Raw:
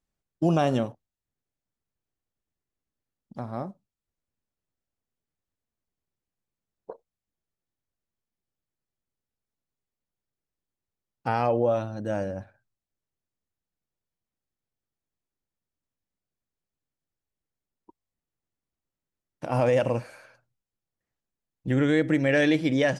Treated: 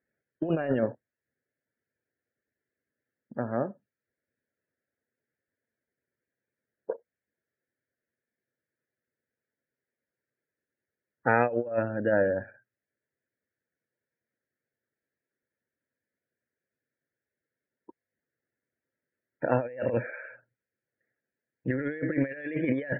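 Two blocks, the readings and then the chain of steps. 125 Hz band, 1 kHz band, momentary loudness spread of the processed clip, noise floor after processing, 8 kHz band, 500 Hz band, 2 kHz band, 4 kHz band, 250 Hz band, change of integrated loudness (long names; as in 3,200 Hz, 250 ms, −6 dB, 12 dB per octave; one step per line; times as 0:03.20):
−6.0 dB, −3.0 dB, 15 LU, below −85 dBFS, can't be measured, −2.5 dB, −1.5 dB, below −20 dB, −4.5 dB, −4.0 dB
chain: loudspeaker in its box 170–2,400 Hz, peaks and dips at 180 Hz −9 dB, 310 Hz −3 dB, 500 Hz +3 dB, 780 Hz −8 dB, 1,100 Hz −10 dB, 1,700 Hz +8 dB
spectral peaks only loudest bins 64
compressor whose output falls as the input rises −29 dBFS, ratio −0.5
level +2.5 dB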